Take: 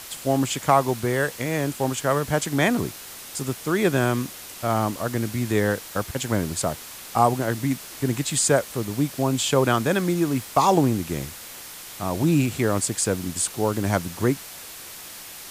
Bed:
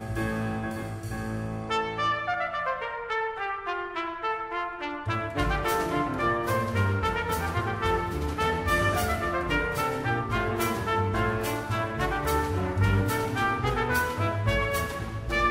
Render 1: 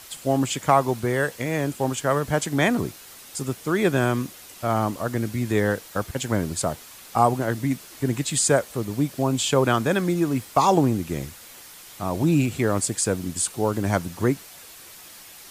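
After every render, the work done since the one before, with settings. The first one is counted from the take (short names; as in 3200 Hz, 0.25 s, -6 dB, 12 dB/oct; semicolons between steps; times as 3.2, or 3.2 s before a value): denoiser 6 dB, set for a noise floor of -40 dBFS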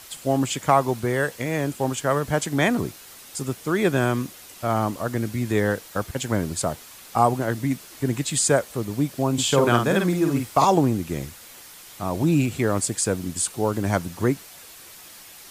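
9.33–10.65 doubler 50 ms -4 dB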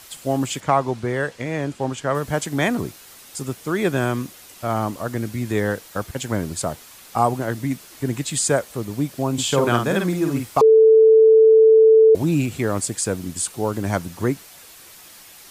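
0.6–2.15 air absorption 65 m; 10.61–12.15 bleep 442 Hz -8 dBFS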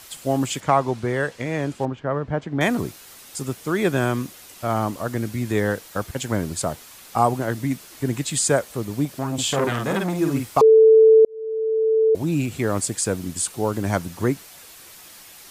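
1.85–2.61 tape spacing loss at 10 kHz 38 dB; 9.05–10.19 core saturation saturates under 1200 Hz; 11.25–12.76 fade in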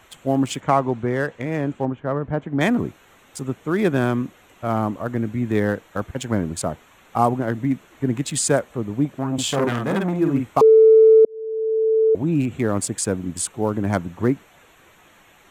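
Wiener smoothing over 9 samples; dynamic EQ 240 Hz, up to +4 dB, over -31 dBFS, Q 1.5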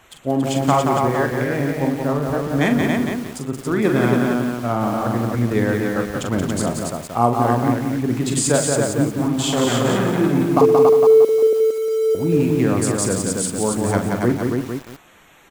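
tapped delay 42/118/280 ms -7/-18/-3.5 dB; lo-fi delay 0.177 s, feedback 35%, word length 6-bit, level -3.5 dB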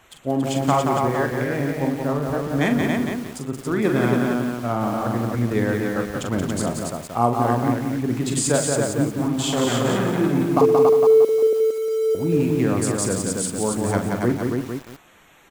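gain -2.5 dB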